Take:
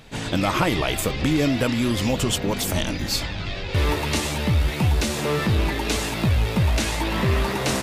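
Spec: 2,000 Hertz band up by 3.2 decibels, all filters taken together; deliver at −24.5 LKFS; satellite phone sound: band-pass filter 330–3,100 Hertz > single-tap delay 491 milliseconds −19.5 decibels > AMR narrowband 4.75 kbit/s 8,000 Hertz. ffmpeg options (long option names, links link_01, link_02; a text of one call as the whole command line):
ffmpeg -i in.wav -af "highpass=330,lowpass=3100,equalizer=frequency=2000:width_type=o:gain=5,aecho=1:1:491:0.106,volume=6dB" -ar 8000 -c:a libopencore_amrnb -b:a 4750 out.amr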